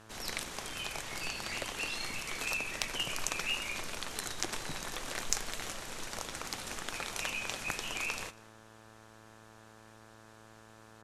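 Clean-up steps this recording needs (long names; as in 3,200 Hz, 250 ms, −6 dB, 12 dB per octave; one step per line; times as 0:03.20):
clipped peaks rebuilt −10 dBFS
hum removal 110.2 Hz, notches 16
echo removal 198 ms −22.5 dB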